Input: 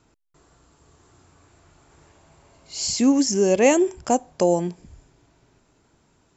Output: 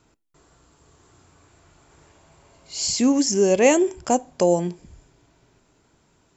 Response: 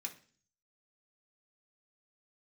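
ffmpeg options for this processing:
-filter_complex "[0:a]asplit=2[a][b];[1:a]atrim=start_sample=2205,asetrate=57330,aresample=44100[c];[b][c]afir=irnorm=-1:irlink=0,volume=-8.5dB[d];[a][d]amix=inputs=2:normalize=0"

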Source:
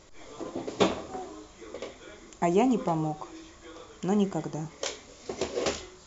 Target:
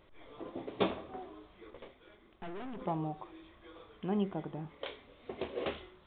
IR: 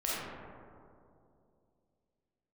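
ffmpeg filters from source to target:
-filter_complex "[0:a]asettb=1/sr,asplit=3[a][b][c];[a]atrim=end=1.704[d];[b]atrim=start=1.7:end=2.82,asetpts=PTS-STARTPTS,afade=t=in:d=0.004:c=qsin,afade=t=out:st=1.116:d=0.004:c=qsin,aeval=exprs='(tanh(56.2*val(0)+0.8)-tanh(0.8))/56.2':c=same[e];[c]atrim=start=2.816[f];[d][e]acrossfade=d=0.004:c1=hsin:c2=qsin[g];[g][f]acrossfade=d=0.004:c1=qsin:c2=hsin,aresample=8000,aresample=44100,volume=-7dB"

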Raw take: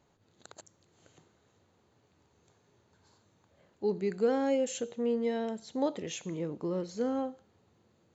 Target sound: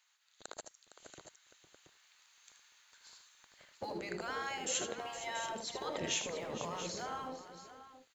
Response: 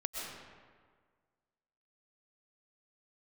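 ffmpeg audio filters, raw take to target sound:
-filter_complex "[0:a]acrossover=split=1500[a][b];[a]aeval=exprs='sgn(val(0))*max(abs(val(0))-0.001,0)':c=same[c];[c][b]amix=inputs=2:normalize=0,acompressor=threshold=-53dB:ratio=1.5,afftfilt=real='re*lt(hypot(re,im),0.0251)':imag='im*lt(hypot(re,im),0.0251)':win_size=1024:overlap=0.75,asplit=2[d][e];[e]aecho=0:1:77|461|682:0.398|0.224|0.282[f];[d][f]amix=inputs=2:normalize=0,dynaudnorm=f=360:g=9:m=7dB,equalizer=f=510:w=0.78:g=4,volume=5dB"

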